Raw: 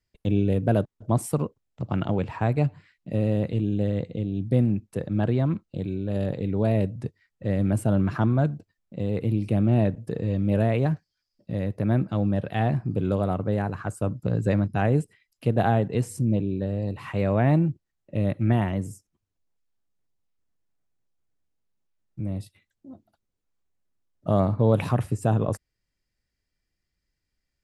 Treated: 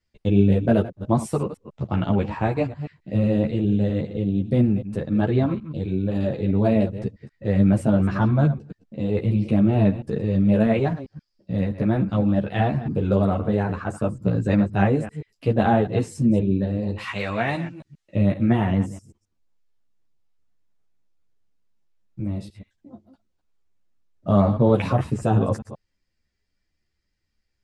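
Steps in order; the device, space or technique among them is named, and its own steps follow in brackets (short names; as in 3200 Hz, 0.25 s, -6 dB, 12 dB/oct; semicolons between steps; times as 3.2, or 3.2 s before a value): reverse delay 0.13 s, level -13 dB; 16.98–18.15 tilt shelf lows -10 dB, about 1100 Hz; string-machine ensemble chorus (ensemble effect; LPF 6900 Hz 12 dB/oct); gain +6.5 dB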